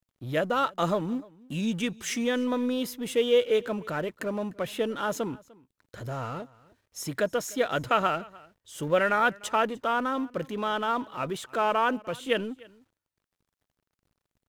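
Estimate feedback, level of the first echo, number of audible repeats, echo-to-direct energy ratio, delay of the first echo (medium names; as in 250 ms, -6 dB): no regular repeats, -23.5 dB, 1, -23.5 dB, 299 ms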